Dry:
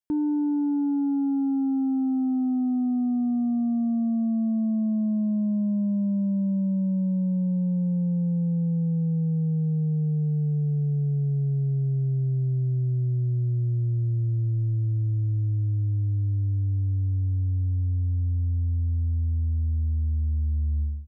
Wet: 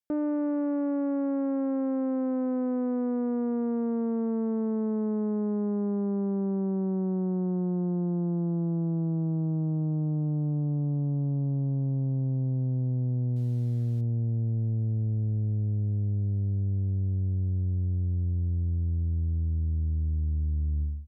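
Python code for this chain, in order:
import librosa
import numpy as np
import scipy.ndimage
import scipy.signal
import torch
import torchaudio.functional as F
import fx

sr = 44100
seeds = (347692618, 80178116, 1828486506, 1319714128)

y = fx.cvsd(x, sr, bps=64000, at=(13.36, 14.01))
y = fx.doppler_dist(y, sr, depth_ms=0.73)
y = y * librosa.db_to_amplitude(-2.5)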